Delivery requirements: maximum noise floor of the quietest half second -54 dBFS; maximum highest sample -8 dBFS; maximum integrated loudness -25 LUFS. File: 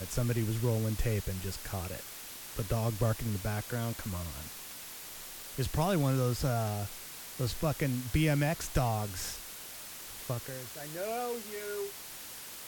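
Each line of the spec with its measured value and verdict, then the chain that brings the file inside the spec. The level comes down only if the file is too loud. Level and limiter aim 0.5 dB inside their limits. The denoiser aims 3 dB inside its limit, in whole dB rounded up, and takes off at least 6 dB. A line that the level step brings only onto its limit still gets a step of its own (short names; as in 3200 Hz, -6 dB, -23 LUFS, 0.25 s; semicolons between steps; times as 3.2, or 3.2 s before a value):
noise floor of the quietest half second -45 dBFS: fail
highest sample -16.5 dBFS: OK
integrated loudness -34.5 LUFS: OK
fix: denoiser 12 dB, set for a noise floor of -45 dBFS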